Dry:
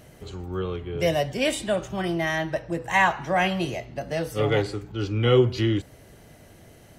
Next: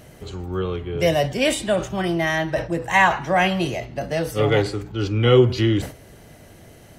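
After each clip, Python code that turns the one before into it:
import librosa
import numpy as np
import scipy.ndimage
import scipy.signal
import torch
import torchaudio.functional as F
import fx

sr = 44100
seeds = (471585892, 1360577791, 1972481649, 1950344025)

y = fx.sustainer(x, sr, db_per_s=140.0)
y = F.gain(torch.from_numpy(y), 4.0).numpy()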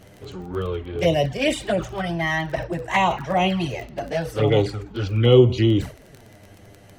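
y = fx.high_shelf(x, sr, hz=7200.0, db=-8.5)
y = fx.env_flanger(y, sr, rest_ms=11.6, full_db=-14.5)
y = fx.dmg_crackle(y, sr, seeds[0], per_s=19.0, level_db=-32.0)
y = F.gain(torch.from_numpy(y), 1.5).numpy()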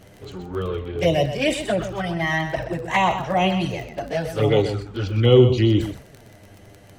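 y = x + 10.0 ** (-10.0 / 20.0) * np.pad(x, (int(126 * sr / 1000.0), 0))[:len(x)]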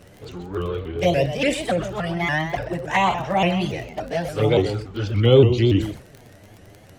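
y = fx.vibrato_shape(x, sr, shape='saw_up', rate_hz=3.5, depth_cents=160.0)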